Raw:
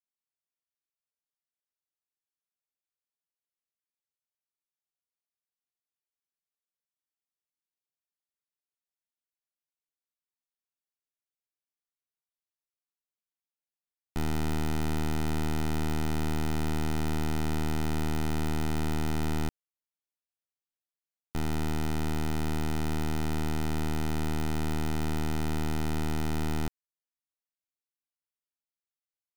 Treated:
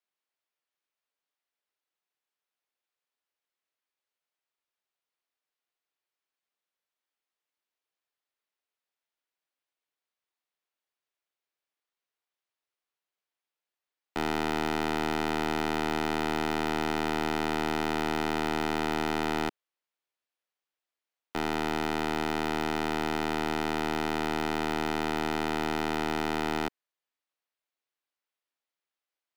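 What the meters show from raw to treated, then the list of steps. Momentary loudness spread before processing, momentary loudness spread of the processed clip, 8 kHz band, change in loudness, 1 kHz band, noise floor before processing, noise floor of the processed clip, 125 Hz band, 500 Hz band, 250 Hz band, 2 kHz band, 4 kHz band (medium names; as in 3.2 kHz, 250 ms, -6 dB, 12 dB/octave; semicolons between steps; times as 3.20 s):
1 LU, 1 LU, -1.5 dB, +2.0 dB, +8.0 dB, under -85 dBFS, under -85 dBFS, -9.0 dB, +6.5 dB, +0.5 dB, +7.5 dB, +5.5 dB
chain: three-band isolator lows -20 dB, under 290 Hz, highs -12 dB, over 4.4 kHz; trim +8 dB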